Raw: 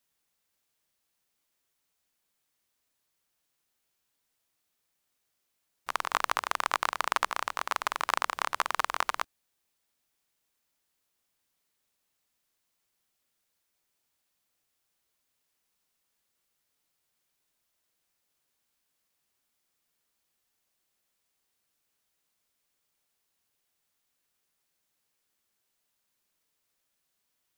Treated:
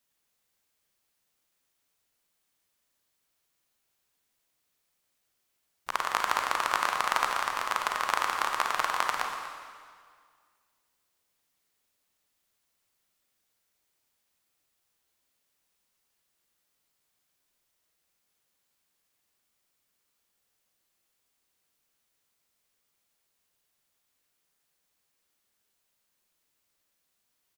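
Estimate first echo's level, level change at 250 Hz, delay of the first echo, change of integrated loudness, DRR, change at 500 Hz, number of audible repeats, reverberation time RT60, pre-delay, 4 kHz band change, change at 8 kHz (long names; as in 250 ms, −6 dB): −15.0 dB, +2.0 dB, 241 ms, +2.0 dB, 2.0 dB, +2.0 dB, 1, 1.9 s, 32 ms, +2.0 dB, +2.0 dB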